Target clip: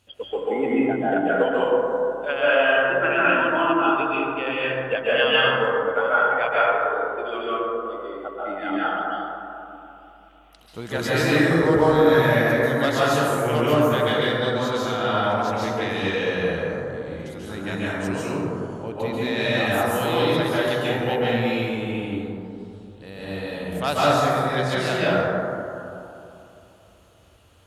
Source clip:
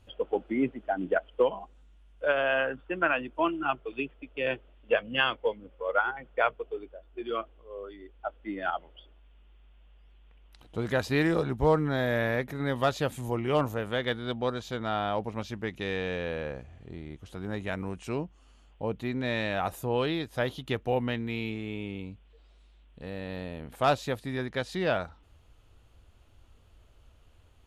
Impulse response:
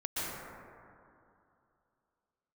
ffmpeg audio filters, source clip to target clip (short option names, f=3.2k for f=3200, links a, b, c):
-filter_complex "[0:a]highpass=98,highshelf=f=2.4k:g=10.5[a];[1:a]atrim=start_sample=2205,asetrate=39249,aresample=44100[b];[a][b]afir=irnorm=-1:irlink=0"